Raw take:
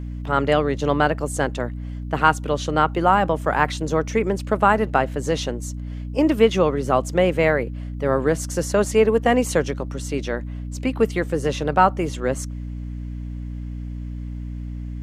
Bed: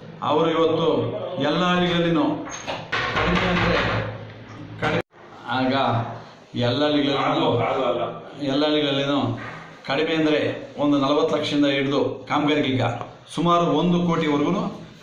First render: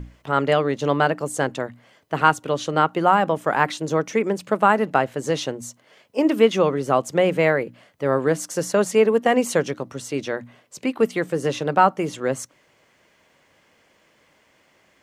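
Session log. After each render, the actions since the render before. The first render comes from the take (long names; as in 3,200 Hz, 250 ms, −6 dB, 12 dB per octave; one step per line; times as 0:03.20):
mains-hum notches 60/120/180/240/300 Hz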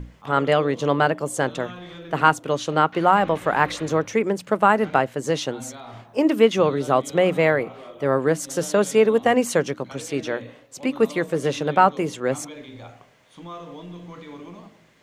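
mix in bed −19 dB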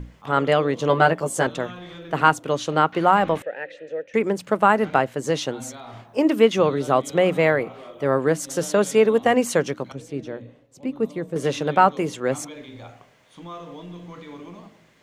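0:00.88–0:01.47: double-tracking delay 12 ms −3 dB
0:03.42–0:04.14: formant filter e
0:09.92–0:11.36: drawn EQ curve 130 Hz 0 dB, 420 Hz −5 dB, 1,400 Hz −13 dB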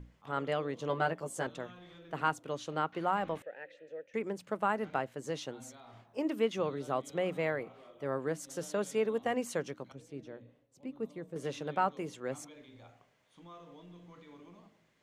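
level −14.5 dB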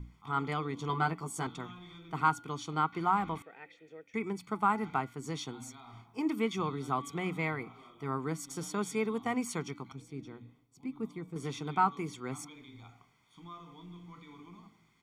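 comb filter 0.9 ms, depth 99%
hum removal 285.3 Hz, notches 16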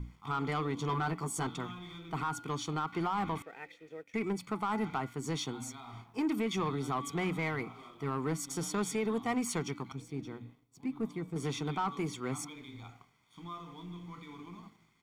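brickwall limiter −25 dBFS, peak gain reduction 11.5 dB
leveller curve on the samples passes 1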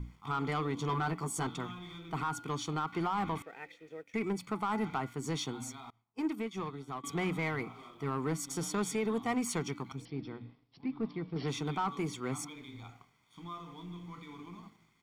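0:05.90–0:07.04: expander for the loud parts 2.5 to 1, over −47 dBFS
0:10.05–0:11.48: bad sample-rate conversion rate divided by 4×, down none, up filtered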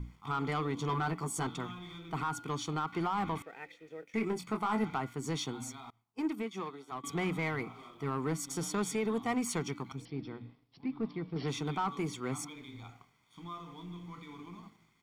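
0:04.00–0:04.84: double-tracking delay 23 ms −6 dB
0:06.42–0:06.91: high-pass filter 120 Hz → 460 Hz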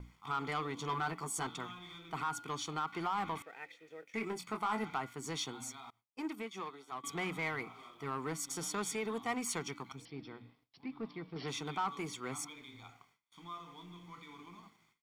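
noise gate with hold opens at −55 dBFS
low-shelf EQ 460 Hz −9.5 dB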